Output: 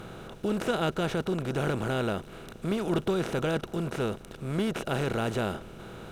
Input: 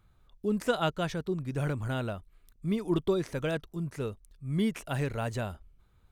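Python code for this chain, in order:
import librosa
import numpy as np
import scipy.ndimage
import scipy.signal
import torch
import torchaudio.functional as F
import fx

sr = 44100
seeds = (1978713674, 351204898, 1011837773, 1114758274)

y = fx.bin_compress(x, sr, power=0.4)
y = F.gain(torch.from_numpy(y), -3.5).numpy()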